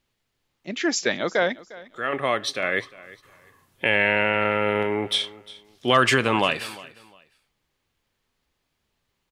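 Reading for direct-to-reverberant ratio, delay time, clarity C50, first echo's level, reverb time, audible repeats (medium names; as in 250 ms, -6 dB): no reverb, 353 ms, no reverb, -20.0 dB, no reverb, 2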